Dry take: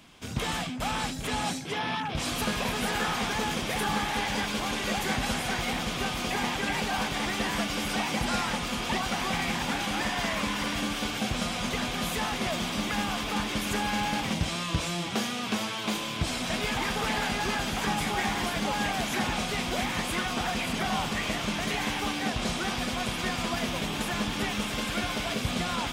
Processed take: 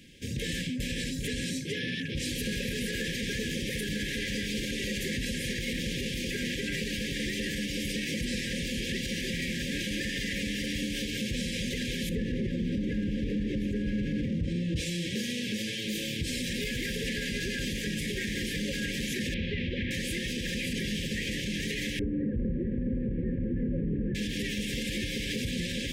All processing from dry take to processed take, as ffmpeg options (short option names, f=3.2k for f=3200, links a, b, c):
-filter_complex "[0:a]asettb=1/sr,asplit=3[a][b][c];[a]atrim=end=12.094[d];[b]atrim=start=12.09:end=14.76,asetpts=PTS-STARTPTS,afade=t=in:d=0.004:c=qsin,afade=t=out:st=2.666:d=0.004:c=qsin,lowpass=f=2.3k:p=1,tiltshelf=f=890:g=7[e];[c]atrim=start=14.756[f];[d][e]acrossfade=d=0.004:c1=hsin:c2=qsin[g];[g][f]acrossfade=d=0.004:c1=qsin:c2=hsin,asettb=1/sr,asplit=3[h][i][j];[h]atrim=end=15.884[k];[i]atrim=start=15.88:end=16.98,asetpts=PTS-STARTPTS,afade=t=in:d=0.004:c=qsin,afade=t=out:st=1.096:d=0.004:c=qsin,lowpass=f=3.1k:p=1,aemphasis=mode=production:type=50fm[l];[j]atrim=start=16.976[m];[k][l]acrossfade=d=0.004:c1=hsin:c2=qsin[n];[n][m]acrossfade=d=0.004:c1=qsin:c2=hsin,asettb=1/sr,asplit=3[o][p][q];[o]atrim=end=19.344[r];[p]atrim=start=19.34:end=19.91,asetpts=PTS-STARTPTS,afade=t=in:d=0.004:c=qsin,afade=t=out:st=0.566:d=0.004:c=qsin,lowpass=f=3.3k:w=0.5412,lowpass=f=3.3k:w=1.3066,equalizer=f=84:w=2.8:g=13.5[s];[q]atrim=start=19.906[t];[r][s]acrossfade=d=0.004:c1=hsin:c2=qsin[u];[u][t]acrossfade=d=0.004:c1=qsin:c2=hsin,asettb=1/sr,asplit=3[v][w][x];[v]atrim=end=21.994[y];[w]atrim=start=21.99:end=24.15,asetpts=PTS-STARTPTS,afade=t=in:d=0.004:c=qsin,afade=t=out:st=2.156:d=0.004:c=qsin,lowpass=f=1.2k:w=0.5412,lowpass=f=1.2k:w=1.3066,lowshelf=f=380:g=8,asplit=2[z][aa];[aa]adelay=48,volume=-13.5dB[ab];[z][ab]amix=inputs=2:normalize=0,atrim=end_sample=95256[ac];[x]atrim=start=24.146[ad];[y][ac]acrossfade=d=0.004:c1=hsin:c2=qsin[ae];[ae][ad]acrossfade=d=0.004:c1=qsin:c2=hsin,afftfilt=real='re*(1-between(b*sr/4096,570,1600))':imag='im*(1-between(b*sr/4096,570,1600))':win_size=4096:overlap=0.75,lowshelf=f=320:g=4,alimiter=limit=-23.5dB:level=0:latency=1:release=45"